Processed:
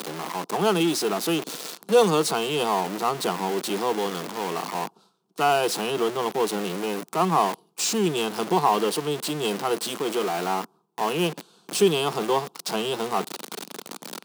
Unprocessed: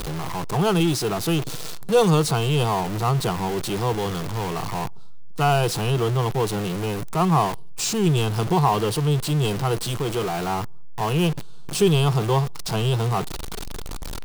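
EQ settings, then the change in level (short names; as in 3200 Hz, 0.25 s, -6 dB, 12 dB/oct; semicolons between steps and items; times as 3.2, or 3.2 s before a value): steep high-pass 200 Hz 36 dB/oct; 0.0 dB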